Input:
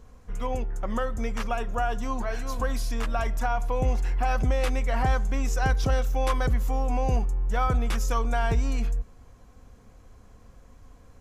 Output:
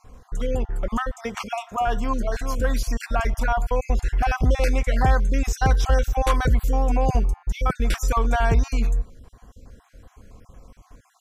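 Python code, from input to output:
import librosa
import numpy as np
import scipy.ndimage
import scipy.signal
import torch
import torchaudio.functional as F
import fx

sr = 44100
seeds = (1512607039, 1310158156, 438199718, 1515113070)

y = fx.spec_dropout(x, sr, seeds[0], share_pct=32)
y = fx.highpass(y, sr, hz=140.0, slope=12, at=(1.16, 1.87))
y = y * librosa.db_to_amplitude(5.5)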